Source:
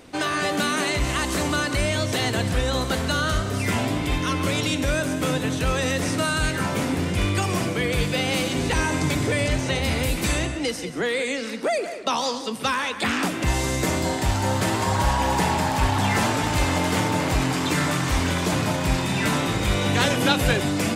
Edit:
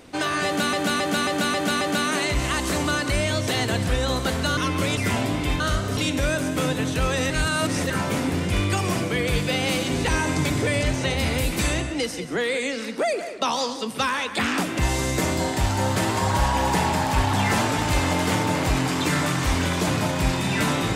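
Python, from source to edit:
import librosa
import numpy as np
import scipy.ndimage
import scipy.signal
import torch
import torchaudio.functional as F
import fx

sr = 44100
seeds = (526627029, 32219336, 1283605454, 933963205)

y = fx.edit(x, sr, fx.repeat(start_s=0.46, length_s=0.27, count=6),
    fx.swap(start_s=3.22, length_s=0.37, other_s=4.22, other_length_s=0.4),
    fx.reverse_span(start_s=5.95, length_s=0.6), tone=tone)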